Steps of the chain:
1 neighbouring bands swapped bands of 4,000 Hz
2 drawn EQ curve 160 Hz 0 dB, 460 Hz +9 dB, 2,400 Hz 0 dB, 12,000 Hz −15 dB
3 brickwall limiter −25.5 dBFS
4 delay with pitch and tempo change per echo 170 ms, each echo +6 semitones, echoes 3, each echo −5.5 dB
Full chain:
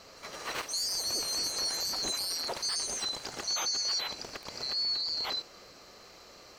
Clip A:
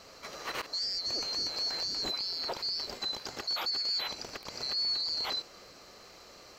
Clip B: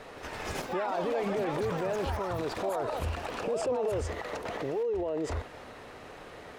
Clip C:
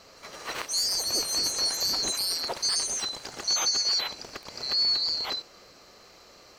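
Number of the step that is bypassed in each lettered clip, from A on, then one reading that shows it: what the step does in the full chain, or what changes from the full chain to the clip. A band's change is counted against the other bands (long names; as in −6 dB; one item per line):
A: 4, 8 kHz band −12.0 dB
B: 1, 4 kHz band −27.5 dB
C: 3, average gain reduction 2.5 dB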